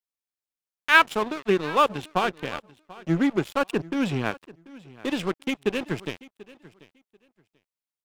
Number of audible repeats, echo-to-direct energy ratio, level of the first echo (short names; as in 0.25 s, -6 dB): 2, -20.5 dB, -20.5 dB